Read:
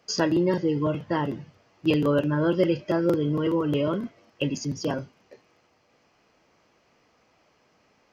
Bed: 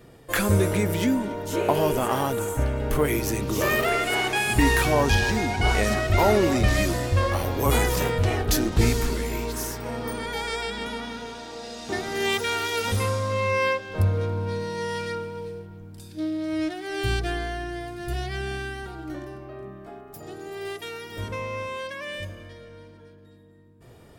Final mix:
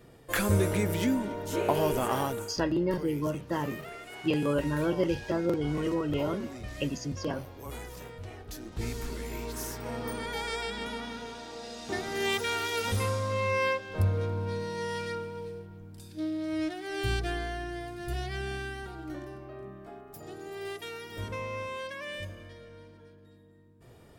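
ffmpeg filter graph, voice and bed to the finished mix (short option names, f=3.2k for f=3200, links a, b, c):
-filter_complex "[0:a]adelay=2400,volume=-5.5dB[a];[1:a]volume=11dB,afade=t=out:st=2.22:d=0.36:silence=0.16788,afade=t=in:st=8.59:d=1.35:silence=0.16788[b];[a][b]amix=inputs=2:normalize=0"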